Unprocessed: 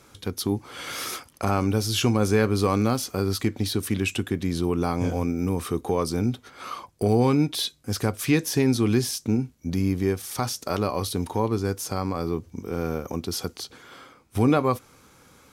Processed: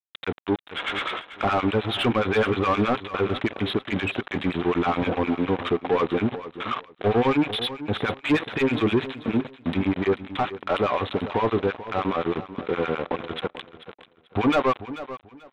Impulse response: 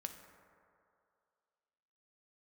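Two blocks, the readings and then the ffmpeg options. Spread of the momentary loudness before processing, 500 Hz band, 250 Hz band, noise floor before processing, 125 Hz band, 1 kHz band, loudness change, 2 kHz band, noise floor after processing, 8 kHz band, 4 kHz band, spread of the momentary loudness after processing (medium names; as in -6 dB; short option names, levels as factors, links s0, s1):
10 LU, +2.0 dB, -0.5 dB, -55 dBFS, -5.5 dB, +4.0 dB, 0.0 dB, +5.5 dB, -59 dBFS, under -20 dB, +0.5 dB, 9 LU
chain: -filter_complex "[0:a]aemphasis=mode=production:type=75fm,acrossover=split=1200[s0][s1];[s0]aeval=exprs='val(0)*(1-1/2+1/2*cos(2*PI*9.6*n/s))':c=same[s2];[s1]aeval=exprs='val(0)*(1-1/2-1/2*cos(2*PI*9.6*n/s))':c=same[s3];[s2][s3]amix=inputs=2:normalize=0,aresample=8000,aeval=exprs='val(0)*gte(abs(val(0)),0.01)':c=same,aresample=44100,asplit=2[s4][s5];[s5]highpass=f=720:p=1,volume=15.8,asoftclip=type=tanh:threshold=0.299[s6];[s4][s6]amix=inputs=2:normalize=0,lowpass=f=1400:p=1,volume=0.501,aecho=1:1:438|876|1314:0.2|0.0459|0.0106"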